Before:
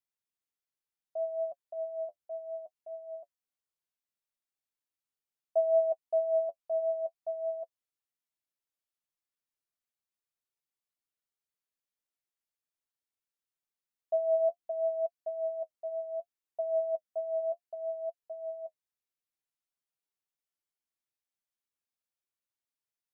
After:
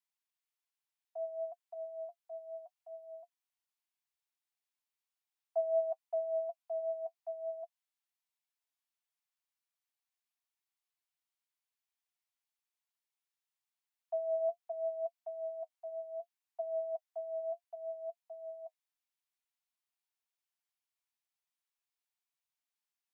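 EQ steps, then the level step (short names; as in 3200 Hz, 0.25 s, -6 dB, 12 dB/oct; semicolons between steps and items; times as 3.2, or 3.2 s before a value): rippled Chebyshev high-pass 670 Hz, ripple 3 dB; +1.5 dB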